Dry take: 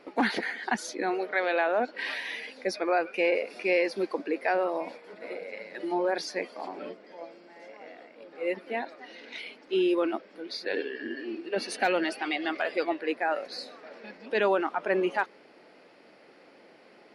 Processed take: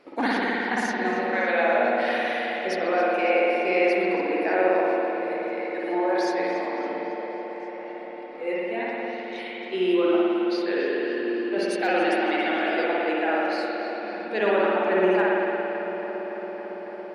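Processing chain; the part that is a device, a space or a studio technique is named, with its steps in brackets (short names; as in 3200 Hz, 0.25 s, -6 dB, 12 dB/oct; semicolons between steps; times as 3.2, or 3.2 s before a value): dub delay into a spring reverb (darkening echo 0.279 s, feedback 84%, low-pass 3900 Hz, level -10 dB; spring tank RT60 2.5 s, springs 54 ms, chirp 75 ms, DRR -5.5 dB); gain -2 dB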